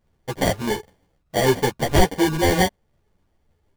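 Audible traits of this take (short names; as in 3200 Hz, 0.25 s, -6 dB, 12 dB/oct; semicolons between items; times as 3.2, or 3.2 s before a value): aliases and images of a low sample rate 1300 Hz, jitter 0%; a shimmering, thickened sound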